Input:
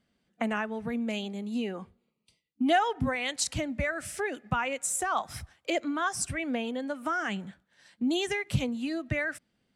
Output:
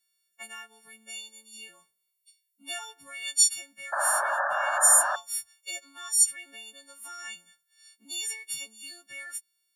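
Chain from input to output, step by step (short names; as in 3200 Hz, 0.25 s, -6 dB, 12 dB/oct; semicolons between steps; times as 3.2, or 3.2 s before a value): frequency quantiser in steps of 4 st; differentiator; painted sound noise, 3.92–5.16, 550–1800 Hz -26 dBFS; gain -1.5 dB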